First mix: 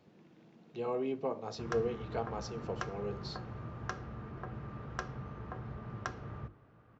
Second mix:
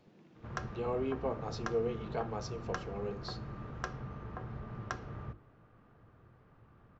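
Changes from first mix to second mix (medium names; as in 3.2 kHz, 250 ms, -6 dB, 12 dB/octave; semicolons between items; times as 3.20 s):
background: entry -1.15 s; master: remove high-pass 47 Hz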